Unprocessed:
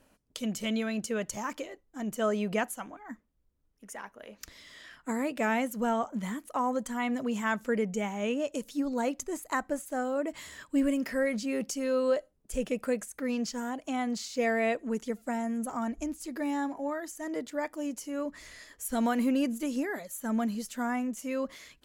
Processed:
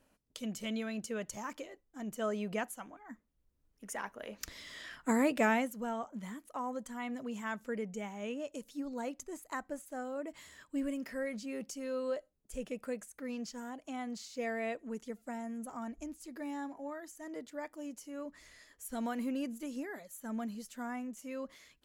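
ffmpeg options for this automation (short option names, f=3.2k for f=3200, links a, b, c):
-af "volume=2.5dB,afade=t=in:st=3.11:d=0.94:silence=0.354813,afade=t=out:st=5.31:d=0.46:silence=0.266073"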